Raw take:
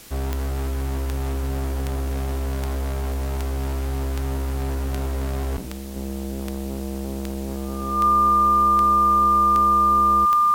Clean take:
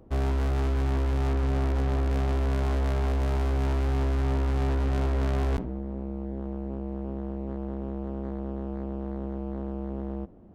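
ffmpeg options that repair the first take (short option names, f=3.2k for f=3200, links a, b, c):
-af "adeclick=t=4,bandreject=f=1.2k:w=30,afwtdn=0.0063,asetnsamples=n=441:p=0,asendcmd='5.96 volume volume -4.5dB',volume=0dB"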